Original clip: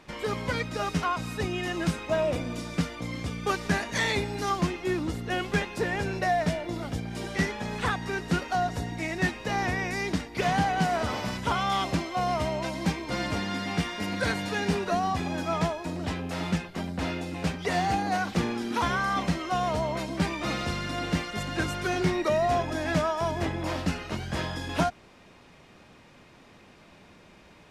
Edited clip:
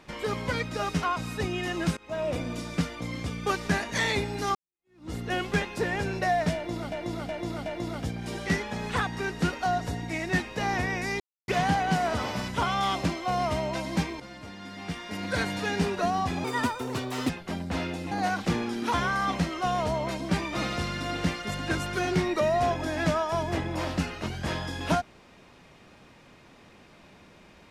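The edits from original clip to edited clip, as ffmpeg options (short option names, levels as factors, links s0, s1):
-filter_complex "[0:a]asplit=12[s0][s1][s2][s3][s4][s5][s6][s7][s8][s9][s10][s11];[s0]atrim=end=1.97,asetpts=PTS-STARTPTS,afade=t=out:st=1.966:d=0.004:c=hsin:silence=0.0841395[s12];[s1]atrim=start=1.97:end=4.55,asetpts=PTS-STARTPTS,afade=t=in:d=0.43:silence=0.0841395,afade=t=out:st=2.576:d=0.004:c=hsin[s13];[s2]atrim=start=4.55:end=6.922,asetpts=PTS-STARTPTS,afade=t=in:d=0.58:c=exp[s14];[s3]atrim=start=6.548:end=6.922[s15];[s4]atrim=start=6.548:end=6.922[s16];[s5]atrim=start=6.548:end=10.09,asetpts=PTS-STARTPTS,afade=t=out:st=3.538:d=0.004:c=hsin[s17];[s6]atrim=start=10.09:end=10.37,asetpts=PTS-STARTPTS,volume=0[s18];[s7]atrim=start=10.37:end=13.09,asetpts=PTS-STARTPTS,afade=t=in:d=0.004:c=hsin,afade=t=out:st=2.716:d=0.004:c=hsin:silence=0.188365[s19];[s8]atrim=start=13.09:end=15.334,asetpts=PTS-STARTPTS,afade=t=in:d=1.24:c=qua:silence=0.188365[s20];[s9]atrim=start=15.33:end=16.57,asetpts=PTS-STARTPTS,asetrate=63945,aresample=44100,atrim=end_sample=37713,asetpts=PTS-STARTPTS[s21];[s10]atrim=start=16.566:end=17.392[s22];[s11]atrim=start=17.998[s23];[s12][s13][s14]concat=n=3:v=0:a=1[s24];[s24][s15]acrossfade=d=0.004:c1=hsin:c2=hsin[s25];[s25][s16]acrossfade=d=0.004:c1=hsin:c2=hsin[s26];[s17][s18][s19][s20]concat=n=4:v=0:a=1[s27];[s26][s27]acrossfade=d=0.004:c1=hsin:c2=hsin[s28];[s28][s21]acrossfade=d=0.004:c1=hsin:c2=hsin[s29];[s29][s22]acrossfade=d=0.004:c1=hsin:c2=hsin[s30];[s30][s23]acrossfade=d=0.004:c1=hsin:c2=hsin"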